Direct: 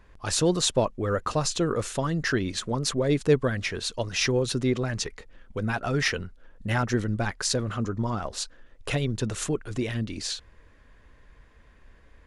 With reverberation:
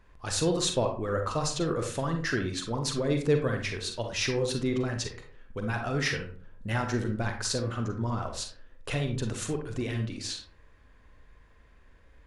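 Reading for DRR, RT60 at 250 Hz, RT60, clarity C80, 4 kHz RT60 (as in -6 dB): 3.5 dB, 0.55 s, 0.50 s, 12.0 dB, 0.25 s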